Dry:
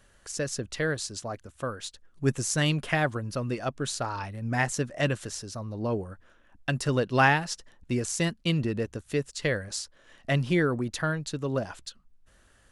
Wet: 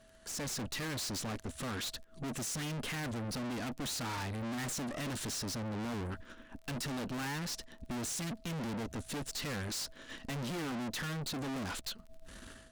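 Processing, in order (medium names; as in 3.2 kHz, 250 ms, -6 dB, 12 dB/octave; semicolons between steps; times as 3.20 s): fifteen-band graphic EQ 250 Hz +10 dB, 630 Hz -6 dB, 4 kHz +4 dB; level rider gain up to 15 dB; whistle 650 Hz -58 dBFS; valve stage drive 37 dB, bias 0.75; crackle 21 per s -48 dBFS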